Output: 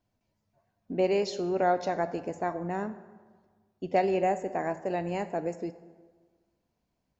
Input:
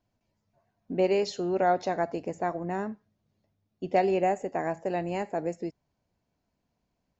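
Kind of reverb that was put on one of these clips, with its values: plate-style reverb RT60 1.5 s, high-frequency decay 0.6×, DRR 12.5 dB; trim -1 dB

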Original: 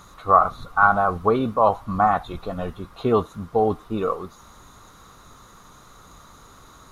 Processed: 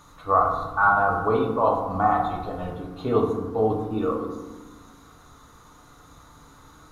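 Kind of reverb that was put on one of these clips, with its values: FDN reverb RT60 1.2 s, low-frequency decay 1.5×, high-frequency decay 0.45×, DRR -0.5 dB; trim -6 dB

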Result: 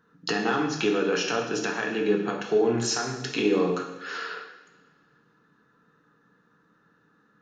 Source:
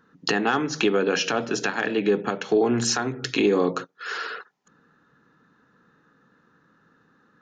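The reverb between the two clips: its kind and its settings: two-slope reverb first 0.88 s, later 2.4 s, from -18 dB, DRR 1 dB; trim -5.5 dB

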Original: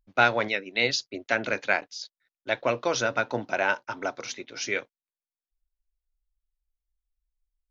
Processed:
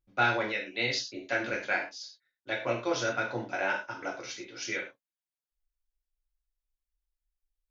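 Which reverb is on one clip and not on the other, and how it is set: gated-style reverb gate 140 ms falling, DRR -2.5 dB; trim -9 dB

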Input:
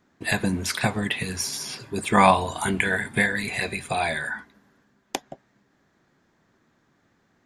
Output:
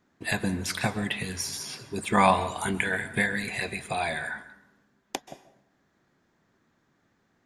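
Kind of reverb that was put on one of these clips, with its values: plate-style reverb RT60 0.71 s, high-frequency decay 0.75×, pre-delay 120 ms, DRR 14.5 dB; trim -4 dB

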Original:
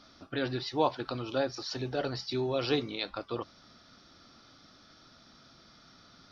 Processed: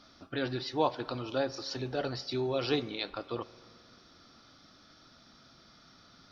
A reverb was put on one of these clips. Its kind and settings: spring tank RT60 2.3 s, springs 44 ms, chirp 45 ms, DRR 17.5 dB; trim -1 dB

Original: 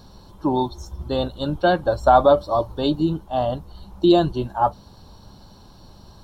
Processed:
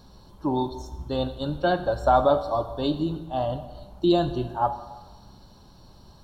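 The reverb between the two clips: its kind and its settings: plate-style reverb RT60 1.2 s, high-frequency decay 0.85×, DRR 9 dB; trim -5 dB

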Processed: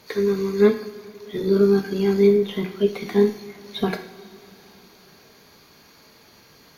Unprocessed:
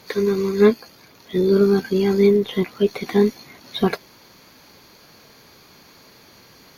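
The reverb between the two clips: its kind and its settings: two-slope reverb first 0.6 s, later 4.4 s, from -18 dB, DRR 5 dB; trim -4 dB

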